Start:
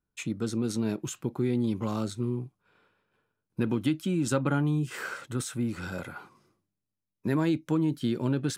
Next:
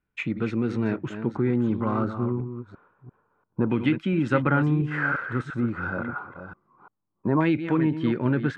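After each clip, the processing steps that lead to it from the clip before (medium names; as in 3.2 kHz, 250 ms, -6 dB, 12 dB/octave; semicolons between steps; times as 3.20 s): chunks repeated in reverse 344 ms, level -9.5 dB; LFO low-pass saw down 0.27 Hz 980–2300 Hz; trim +3.5 dB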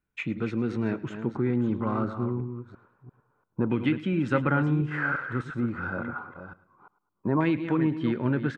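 feedback delay 106 ms, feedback 37%, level -18.5 dB; trim -2.5 dB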